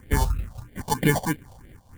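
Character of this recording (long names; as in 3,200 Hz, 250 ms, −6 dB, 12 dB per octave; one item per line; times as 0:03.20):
aliases and images of a low sample rate 1,300 Hz, jitter 0%
phaser sweep stages 4, 3.1 Hz, lowest notch 310–1,000 Hz
amplitude modulation by smooth noise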